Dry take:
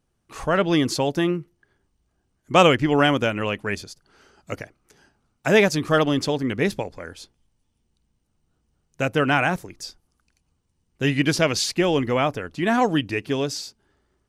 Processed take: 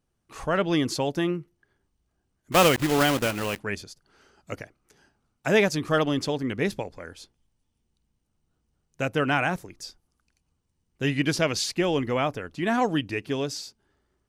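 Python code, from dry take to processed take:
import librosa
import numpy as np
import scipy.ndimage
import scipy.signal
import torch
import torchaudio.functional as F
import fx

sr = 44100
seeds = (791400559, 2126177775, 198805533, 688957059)

y = fx.block_float(x, sr, bits=3, at=(2.52, 3.6))
y = F.gain(torch.from_numpy(y), -4.0).numpy()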